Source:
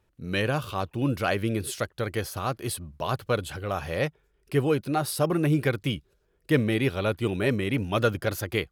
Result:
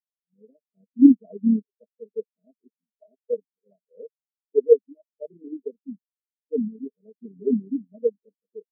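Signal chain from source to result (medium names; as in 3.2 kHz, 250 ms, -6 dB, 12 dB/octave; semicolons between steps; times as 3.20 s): Chebyshev band-pass 180–640 Hz, order 4; peaking EQ 240 Hz +2.5 dB 0.83 oct; comb 4.5 ms, depth 55%; level rider gain up to 15 dB; AM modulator 36 Hz, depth 35%; spectral contrast expander 4:1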